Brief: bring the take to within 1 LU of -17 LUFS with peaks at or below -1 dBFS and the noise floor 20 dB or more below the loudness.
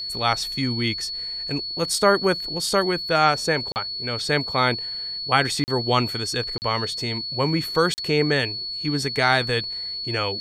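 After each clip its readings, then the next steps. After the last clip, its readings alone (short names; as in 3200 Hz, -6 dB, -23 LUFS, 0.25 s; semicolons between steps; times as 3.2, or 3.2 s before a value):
dropouts 4; longest dropout 39 ms; steady tone 4400 Hz; tone level -28 dBFS; loudness -22.5 LUFS; peak -3.0 dBFS; loudness target -17.0 LUFS
-> interpolate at 3.72/5.64/6.58/7.94, 39 ms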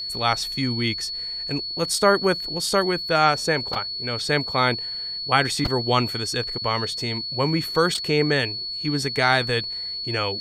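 dropouts 0; steady tone 4400 Hz; tone level -28 dBFS
-> notch 4400 Hz, Q 30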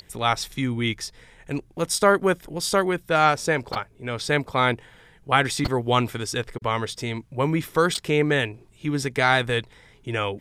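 steady tone none; loudness -24.0 LUFS; peak -3.5 dBFS; loudness target -17.0 LUFS
-> gain +7 dB; limiter -1 dBFS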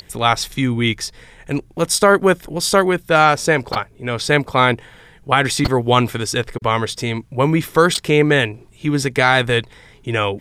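loudness -17.5 LUFS; peak -1.0 dBFS; noise floor -47 dBFS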